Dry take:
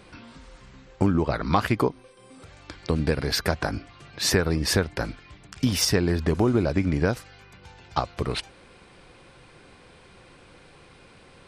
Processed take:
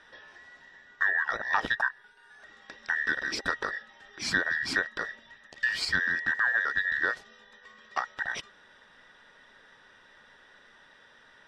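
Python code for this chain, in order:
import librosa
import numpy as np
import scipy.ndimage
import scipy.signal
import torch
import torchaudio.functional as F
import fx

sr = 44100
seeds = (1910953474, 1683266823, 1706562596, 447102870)

y = fx.band_invert(x, sr, width_hz=2000)
y = scipy.signal.sosfilt(scipy.signal.butter(2, 5100.0, 'lowpass', fs=sr, output='sos'), y)
y = F.gain(torch.from_numpy(y), -5.5).numpy()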